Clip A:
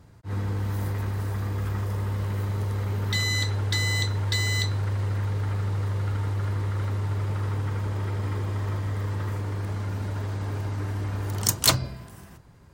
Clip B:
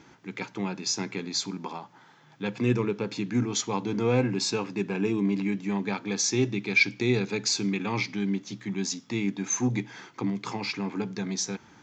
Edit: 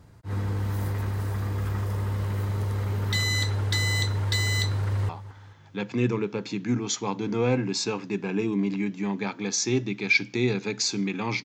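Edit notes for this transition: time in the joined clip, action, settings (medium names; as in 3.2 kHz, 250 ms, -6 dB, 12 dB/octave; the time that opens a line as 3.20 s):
clip A
4.70–5.09 s: echo throw 220 ms, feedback 45%, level -17.5 dB
5.09 s: go over to clip B from 1.75 s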